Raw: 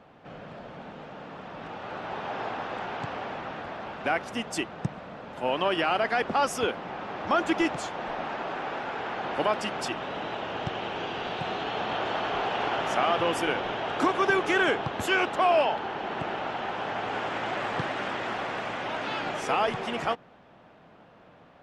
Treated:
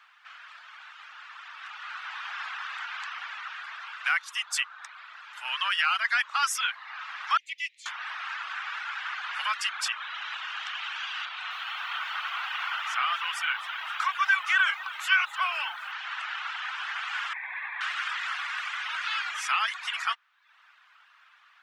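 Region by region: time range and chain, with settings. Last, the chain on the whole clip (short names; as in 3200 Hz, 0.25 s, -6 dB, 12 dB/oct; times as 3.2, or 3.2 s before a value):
7.37–7.86 steep high-pass 2000 Hz 96 dB/oct + tilt -3.5 dB/oct + upward expander, over -50 dBFS
11.25–15.92 high shelf 4400 Hz -10 dB + notch 1700 Hz, Q 18 + lo-fi delay 0.259 s, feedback 55%, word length 9-bit, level -14.5 dB
17.33–17.81 CVSD 16 kbps + fixed phaser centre 2000 Hz, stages 8
whole clip: reverb removal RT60 0.67 s; steep high-pass 1200 Hz 36 dB/oct; gain +6 dB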